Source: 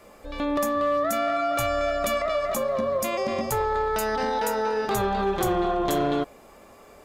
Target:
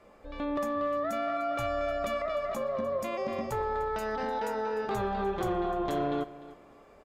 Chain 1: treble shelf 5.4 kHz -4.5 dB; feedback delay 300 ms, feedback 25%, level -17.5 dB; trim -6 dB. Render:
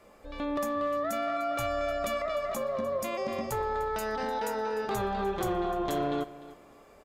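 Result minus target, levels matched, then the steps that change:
8 kHz band +7.0 dB
change: treble shelf 5.4 kHz -15.5 dB

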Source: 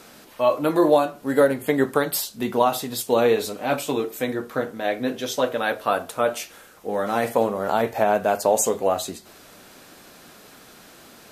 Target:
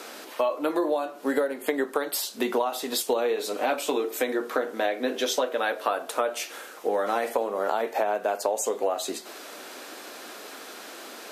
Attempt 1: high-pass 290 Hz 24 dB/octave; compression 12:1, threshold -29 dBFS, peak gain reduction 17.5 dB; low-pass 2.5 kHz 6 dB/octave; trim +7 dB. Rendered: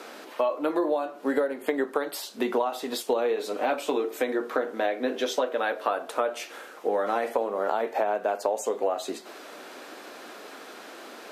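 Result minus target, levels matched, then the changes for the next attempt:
8 kHz band -7.0 dB
change: low-pass 8.7 kHz 6 dB/octave

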